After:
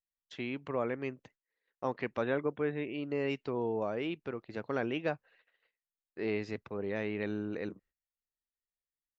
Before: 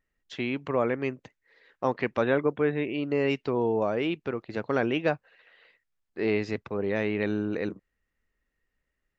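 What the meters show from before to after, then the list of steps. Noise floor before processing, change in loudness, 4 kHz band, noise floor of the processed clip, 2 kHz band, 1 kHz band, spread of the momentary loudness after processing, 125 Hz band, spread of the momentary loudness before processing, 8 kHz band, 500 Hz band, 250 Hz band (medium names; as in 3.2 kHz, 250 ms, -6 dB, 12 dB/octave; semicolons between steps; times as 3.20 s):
-82 dBFS, -7.5 dB, -7.5 dB, under -85 dBFS, -7.5 dB, -7.5 dB, 9 LU, -7.5 dB, 9 LU, no reading, -7.5 dB, -7.5 dB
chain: gate -56 dBFS, range -19 dB; trim -7.5 dB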